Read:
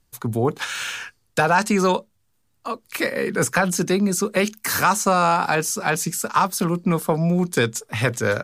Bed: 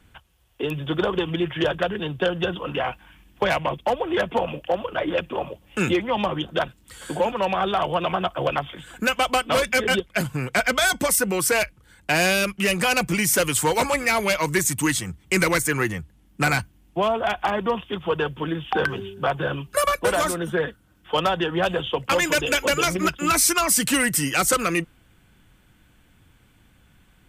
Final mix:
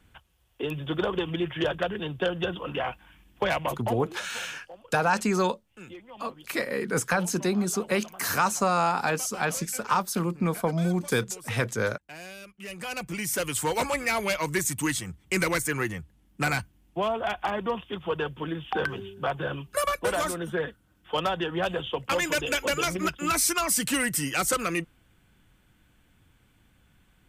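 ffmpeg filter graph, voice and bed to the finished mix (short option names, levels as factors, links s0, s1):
-filter_complex "[0:a]adelay=3550,volume=0.501[s0];[1:a]volume=4.47,afade=t=out:st=3.73:d=0.43:silence=0.11885,afade=t=in:st=12.53:d=1.26:silence=0.133352[s1];[s0][s1]amix=inputs=2:normalize=0"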